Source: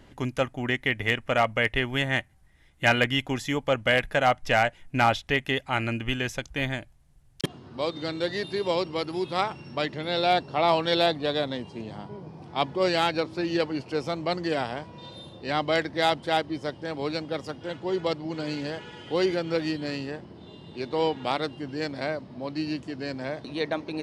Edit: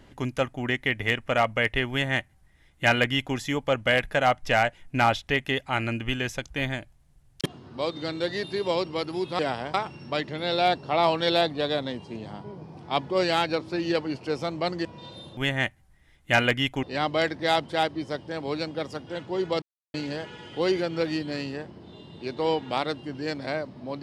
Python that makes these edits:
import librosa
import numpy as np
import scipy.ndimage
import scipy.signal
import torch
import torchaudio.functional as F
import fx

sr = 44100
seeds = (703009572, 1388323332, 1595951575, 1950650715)

y = fx.edit(x, sr, fx.duplicate(start_s=1.9, length_s=1.46, to_s=15.37),
    fx.move(start_s=14.5, length_s=0.35, to_s=9.39),
    fx.silence(start_s=18.16, length_s=0.32), tone=tone)